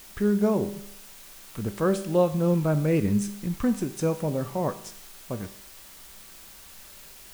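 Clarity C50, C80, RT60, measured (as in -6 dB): 13.0 dB, 15.5 dB, 0.70 s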